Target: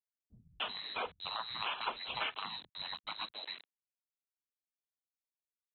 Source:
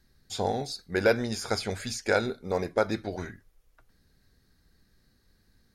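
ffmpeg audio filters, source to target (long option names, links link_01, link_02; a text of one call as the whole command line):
ffmpeg -i in.wav -filter_complex "[0:a]afftfilt=real='real(if(lt(b,736),b+184*(1-2*mod(floor(b/184),2)),b),0)':imag='imag(if(lt(b,736),b+184*(1-2*mod(floor(b/184),2)),b),0)':win_size=2048:overlap=0.75,aresample=8000,aeval=exprs='val(0)*gte(abs(val(0)),0.00188)':channel_layout=same,aresample=44100,aemphasis=mode=production:type=bsi,acrossover=split=160[link_01][link_02];[link_02]adelay=300[link_03];[link_01][link_03]amix=inputs=2:normalize=0,acompressor=threshold=-45dB:ratio=2.5,volume=7.5dB" out.wav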